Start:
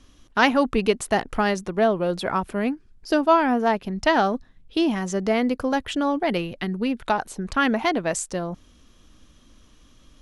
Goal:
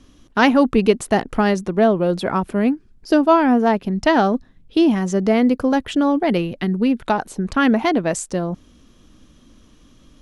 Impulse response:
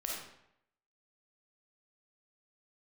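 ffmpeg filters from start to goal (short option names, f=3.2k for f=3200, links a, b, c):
-af "equalizer=f=230:t=o:w=2.5:g=6.5,volume=1dB"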